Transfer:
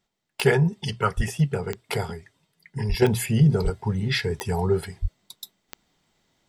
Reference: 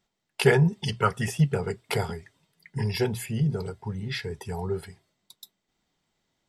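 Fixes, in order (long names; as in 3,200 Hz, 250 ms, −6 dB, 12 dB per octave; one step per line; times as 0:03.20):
click removal
high-pass at the plosives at 0:01.16/0:02.88/0:03.63/0:05.01
level correction −7.5 dB, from 0:03.02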